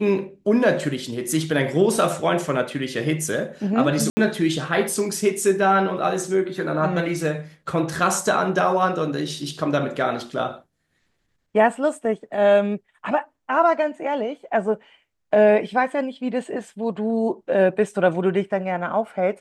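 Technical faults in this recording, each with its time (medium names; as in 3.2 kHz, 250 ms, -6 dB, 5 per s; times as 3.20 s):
4.10–4.17 s: dropout 70 ms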